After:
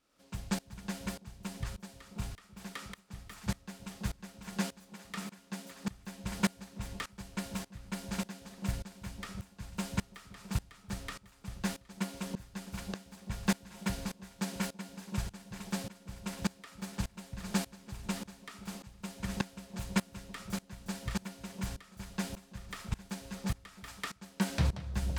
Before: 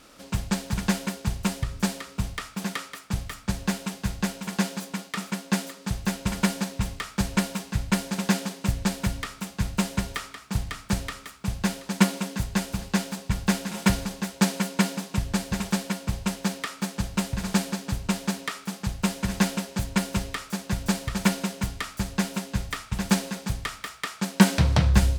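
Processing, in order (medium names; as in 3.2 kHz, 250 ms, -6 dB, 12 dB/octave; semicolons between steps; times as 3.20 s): two-band feedback delay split 790 Hz, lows 331 ms, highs 767 ms, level -11.5 dB; sawtooth tremolo in dB swelling 1.7 Hz, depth 21 dB; trim -5 dB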